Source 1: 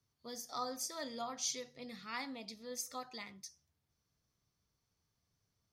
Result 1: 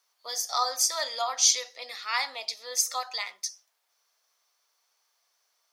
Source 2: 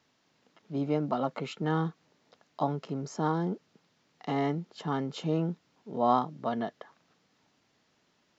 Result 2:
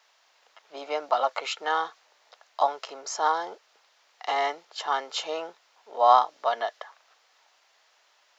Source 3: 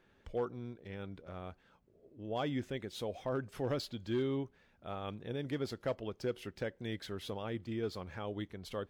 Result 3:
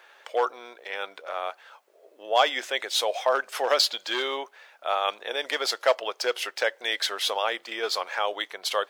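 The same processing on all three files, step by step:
HPF 620 Hz 24 dB/oct; dynamic EQ 5500 Hz, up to +4 dB, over -58 dBFS, Q 0.8; match loudness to -27 LUFS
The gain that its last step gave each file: +13.5, +9.0, +19.0 dB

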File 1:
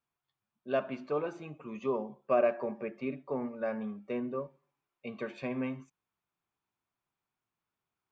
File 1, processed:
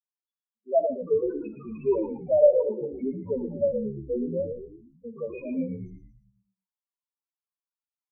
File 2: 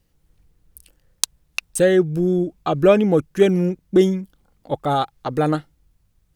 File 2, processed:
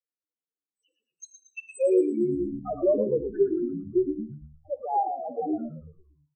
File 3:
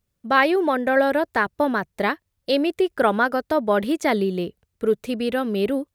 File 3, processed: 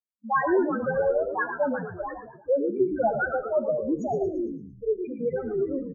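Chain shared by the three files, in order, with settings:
FFT band-pass 210–8200 Hz; gate with hold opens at -40 dBFS; low shelf 340 Hz -10.5 dB; loudest bins only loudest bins 2; tremolo 3.6 Hz, depth 53%; on a send: frequency-shifting echo 0.114 s, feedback 48%, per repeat -76 Hz, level -8 dB; on the sum: non-linear reverb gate 0.16 s flat, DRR 11 dB; match loudness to -27 LUFS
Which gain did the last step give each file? +16.0, +2.0, +4.5 dB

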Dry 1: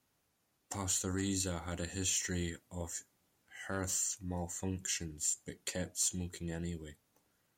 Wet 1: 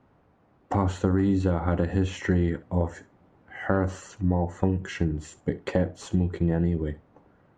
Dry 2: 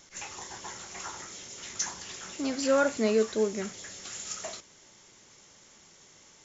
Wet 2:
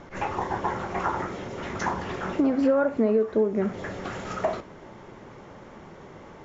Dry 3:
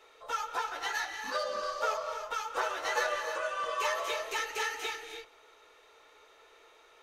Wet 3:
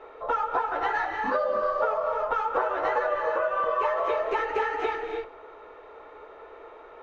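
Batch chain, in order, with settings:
LPF 1100 Hz 12 dB/oct; compressor 6:1, threshold -39 dBFS; flutter echo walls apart 11.3 m, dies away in 0.21 s; match loudness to -27 LUFS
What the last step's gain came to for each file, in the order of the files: +20.0, +18.5, +16.0 dB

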